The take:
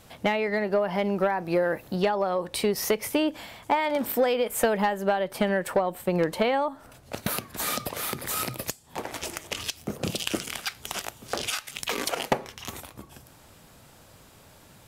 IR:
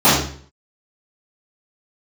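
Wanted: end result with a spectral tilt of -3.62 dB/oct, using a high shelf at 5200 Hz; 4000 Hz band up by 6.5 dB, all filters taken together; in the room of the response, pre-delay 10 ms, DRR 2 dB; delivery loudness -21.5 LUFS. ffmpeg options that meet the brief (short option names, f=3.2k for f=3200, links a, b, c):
-filter_complex "[0:a]equalizer=f=4k:t=o:g=6,highshelf=f=5.2k:g=6,asplit=2[a][b];[1:a]atrim=start_sample=2205,adelay=10[c];[b][c]afir=irnorm=-1:irlink=0,volume=-29dB[d];[a][d]amix=inputs=2:normalize=0,volume=1.5dB"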